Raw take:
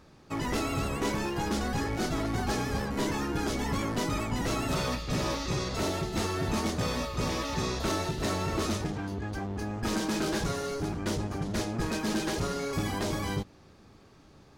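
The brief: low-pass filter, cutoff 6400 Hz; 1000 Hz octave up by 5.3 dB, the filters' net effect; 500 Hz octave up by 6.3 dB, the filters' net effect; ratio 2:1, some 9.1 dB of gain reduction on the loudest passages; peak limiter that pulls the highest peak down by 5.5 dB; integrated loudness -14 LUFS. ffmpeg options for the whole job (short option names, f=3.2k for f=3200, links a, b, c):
-af "lowpass=6.4k,equalizer=f=500:t=o:g=7,equalizer=f=1k:t=o:g=4.5,acompressor=threshold=-40dB:ratio=2,volume=25dB,alimiter=limit=-5dB:level=0:latency=1"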